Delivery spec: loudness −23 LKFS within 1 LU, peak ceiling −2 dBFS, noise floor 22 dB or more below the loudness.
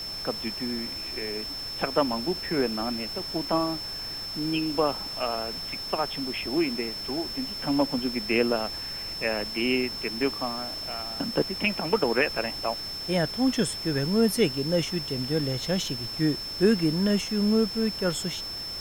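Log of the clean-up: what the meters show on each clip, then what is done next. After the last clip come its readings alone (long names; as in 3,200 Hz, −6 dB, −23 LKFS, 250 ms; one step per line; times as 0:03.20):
interfering tone 5,300 Hz; level of the tone −33 dBFS; background noise floor −35 dBFS; target noise floor −49 dBFS; integrated loudness −27.0 LKFS; sample peak −9.5 dBFS; target loudness −23.0 LKFS
→ notch filter 5,300 Hz, Q 30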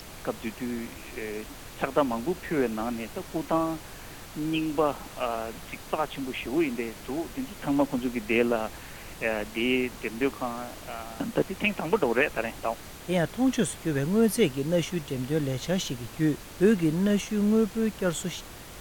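interfering tone none found; background noise floor −44 dBFS; target noise floor −51 dBFS
→ noise reduction from a noise print 7 dB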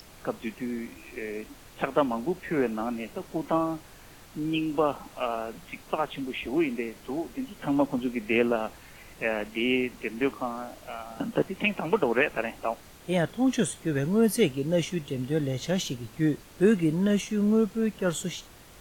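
background noise floor −50 dBFS; target noise floor −51 dBFS
→ noise reduction from a noise print 6 dB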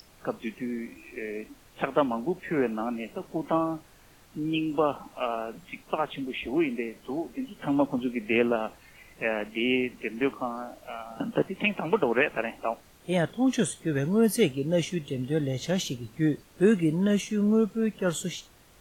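background noise floor −56 dBFS; integrated loudness −28.5 LKFS; sample peak −10.0 dBFS; target loudness −23.0 LKFS
→ level +5.5 dB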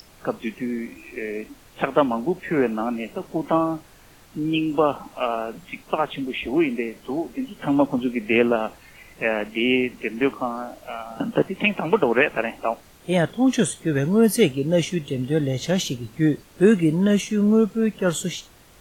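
integrated loudness −23.0 LKFS; sample peak −4.5 dBFS; background noise floor −51 dBFS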